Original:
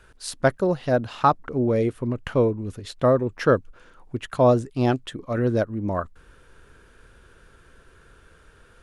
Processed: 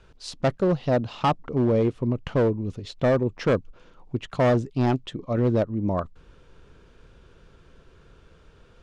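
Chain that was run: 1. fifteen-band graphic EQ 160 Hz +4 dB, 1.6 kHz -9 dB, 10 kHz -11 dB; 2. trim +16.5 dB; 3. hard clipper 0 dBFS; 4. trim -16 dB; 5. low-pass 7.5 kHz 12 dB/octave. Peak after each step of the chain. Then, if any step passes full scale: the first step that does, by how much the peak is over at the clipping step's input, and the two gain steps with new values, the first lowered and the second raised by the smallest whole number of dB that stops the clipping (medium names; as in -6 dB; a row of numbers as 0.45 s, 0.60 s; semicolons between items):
-7.0 dBFS, +9.5 dBFS, 0.0 dBFS, -16.0 dBFS, -15.5 dBFS; step 2, 9.5 dB; step 2 +6.5 dB, step 4 -6 dB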